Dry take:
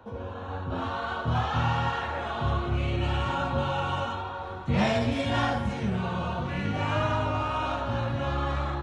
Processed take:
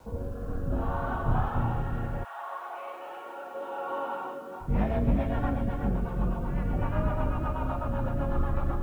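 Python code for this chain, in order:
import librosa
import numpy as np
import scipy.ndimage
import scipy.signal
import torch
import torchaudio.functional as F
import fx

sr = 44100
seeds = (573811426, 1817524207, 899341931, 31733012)

y = fx.octave_divider(x, sr, octaves=2, level_db=3.0)
y = scipy.signal.sosfilt(scipy.signal.butter(2, 1300.0, 'lowpass', fs=sr, output='sos'), y)
y = fx.rider(y, sr, range_db=4, speed_s=2.0)
y = fx.doubler(y, sr, ms=47.0, db=-14)
y = fx.echo_feedback(y, sr, ms=351, feedback_pct=21, wet_db=-5)
y = fx.rotary_switch(y, sr, hz=0.65, then_hz=8.0, switch_at_s=4.13)
y = fx.highpass(y, sr, hz=fx.line((2.23, 840.0), (4.6, 230.0)), slope=24, at=(2.23, 4.6), fade=0.02)
y = fx.quant_dither(y, sr, seeds[0], bits=10, dither='none')
y = F.gain(torch.from_numpy(y), -2.0).numpy()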